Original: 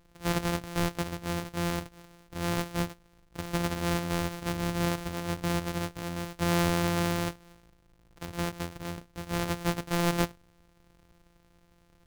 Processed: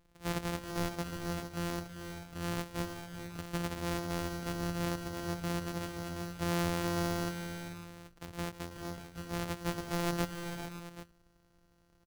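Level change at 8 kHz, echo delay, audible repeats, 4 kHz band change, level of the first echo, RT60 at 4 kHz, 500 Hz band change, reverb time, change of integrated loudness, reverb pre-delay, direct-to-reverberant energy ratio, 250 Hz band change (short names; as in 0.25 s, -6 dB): -5.5 dB, 0.323 s, 5, -5.5 dB, -15.0 dB, none, -5.0 dB, none, -6.0 dB, none, none, -5.0 dB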